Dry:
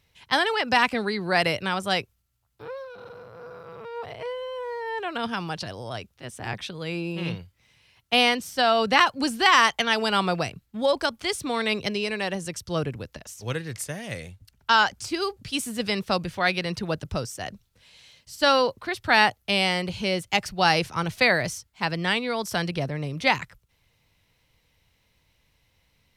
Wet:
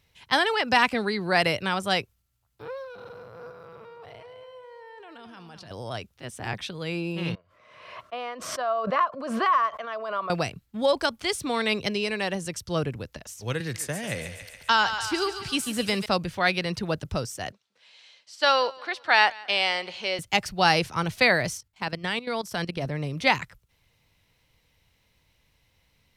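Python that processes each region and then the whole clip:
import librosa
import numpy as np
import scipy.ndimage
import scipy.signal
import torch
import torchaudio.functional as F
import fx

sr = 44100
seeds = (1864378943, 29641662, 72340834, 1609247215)

y = fx.chain(x, sr, fx.level_steps(step_db=23),
    fx.echo_feedback(ms=211, feedback_pct=32, wet_db=-9.5), at=(3.51, 5.71))
y = fx.chain(y, sr, fx.double_bandpass(hz=830.0, octaves=0.78),
    fx.pre_swell(db_per_s=50.0), at=(7.35, 10.3))
y = fx.chain(y, sr, fx.echo_thinned(ms=140, feedback_pct=60, hz=670.0, wet_db=-9),
    fx.band_squash(depth_pct=40), at=(13.6, 16.06))
y = fx.chain(y, sr, fx.bandpass_edges(low_hz=540.0, high_hz=5500.0),
    fx.echo_feedback(ms=178, feedback_pct=42, wet_db=-23), at=(17.52, 20.19))
y = fx.chain(y, sr, fx.level_steps(step_db=14),
    fx.hum_notches(base_hz=50, count=3), at=(21.57, 22.86))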